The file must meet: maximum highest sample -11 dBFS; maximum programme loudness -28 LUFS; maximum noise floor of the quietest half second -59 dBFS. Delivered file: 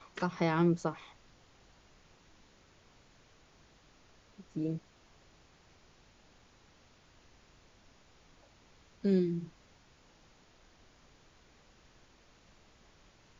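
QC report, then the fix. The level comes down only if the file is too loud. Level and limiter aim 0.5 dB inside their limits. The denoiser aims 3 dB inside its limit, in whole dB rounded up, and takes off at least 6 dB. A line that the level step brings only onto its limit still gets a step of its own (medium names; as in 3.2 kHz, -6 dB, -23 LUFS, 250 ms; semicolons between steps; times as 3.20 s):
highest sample -17.5 dBFS: pass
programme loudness -33.0 LUFS: pass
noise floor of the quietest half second -63 dBFS: pass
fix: none needed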